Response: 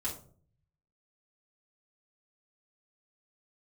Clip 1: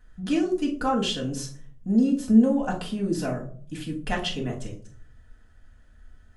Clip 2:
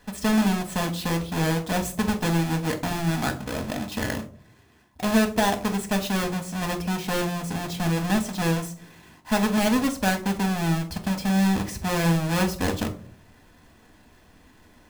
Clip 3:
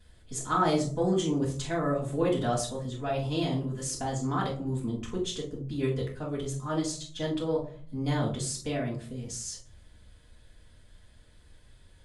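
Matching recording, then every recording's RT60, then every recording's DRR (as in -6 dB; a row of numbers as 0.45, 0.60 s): 3; 0.50, 0.50, 0.50 s; -1.0, 5.0, -5.5 dB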